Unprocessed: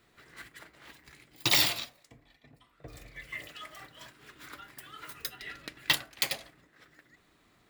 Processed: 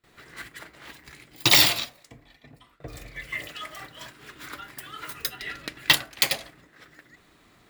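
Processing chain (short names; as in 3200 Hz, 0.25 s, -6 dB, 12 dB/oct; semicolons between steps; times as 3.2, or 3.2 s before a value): gate with hold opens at -57 dBFS; gain +7.5 dB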